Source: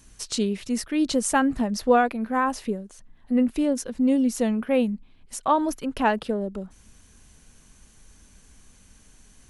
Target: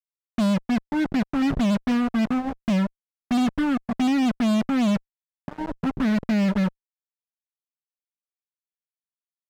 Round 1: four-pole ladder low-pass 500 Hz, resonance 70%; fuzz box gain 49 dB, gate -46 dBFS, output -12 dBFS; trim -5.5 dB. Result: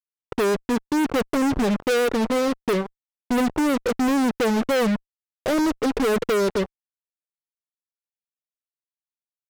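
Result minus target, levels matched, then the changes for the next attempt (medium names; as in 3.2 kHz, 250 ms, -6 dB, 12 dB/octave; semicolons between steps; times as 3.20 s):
500 Hz band +10.0 dB
change: four-pole ladder low-pass 190 Hz, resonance 70%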